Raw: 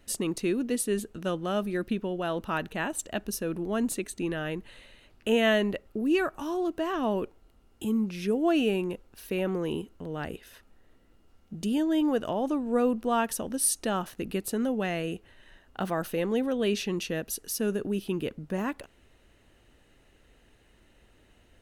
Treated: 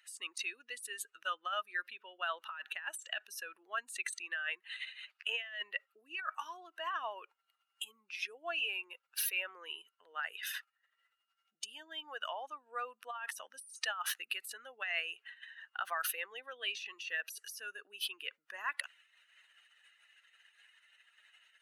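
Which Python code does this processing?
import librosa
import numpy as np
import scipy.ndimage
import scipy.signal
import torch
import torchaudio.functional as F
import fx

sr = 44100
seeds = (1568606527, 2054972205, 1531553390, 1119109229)

y = fx.spec_expand(x, sr, power=1.7)
y = scipy.signal.sosfilt(scipy.signal.butter(4, 1400.0, 'highpass', fs=sr, output='sos'), y)
y = fx.over_compress(y, sr, threshold_db=-47.0, ratio=-1.0)
y = y * 10.0 ** (7.0 / 20.0)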